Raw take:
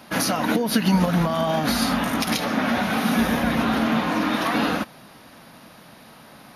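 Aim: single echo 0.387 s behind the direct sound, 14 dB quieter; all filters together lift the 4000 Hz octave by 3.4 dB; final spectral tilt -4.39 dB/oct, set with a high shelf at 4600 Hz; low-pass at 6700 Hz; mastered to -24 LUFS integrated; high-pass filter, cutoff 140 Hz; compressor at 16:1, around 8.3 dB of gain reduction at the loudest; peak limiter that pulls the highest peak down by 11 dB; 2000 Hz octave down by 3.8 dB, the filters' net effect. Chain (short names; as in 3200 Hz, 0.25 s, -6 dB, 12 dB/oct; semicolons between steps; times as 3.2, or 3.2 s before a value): HPF 140 Hz; LPF 6700 Hz; bell 2000 Hz -7 dB; bell 4000 Hz +4 dB; high shelf 4600 Hz +5.5 dB; compressor 16:1, threshold -24 dBFS; limiter -23.5 dBFS; echo 0.387 s -14 dB; gain +8 dB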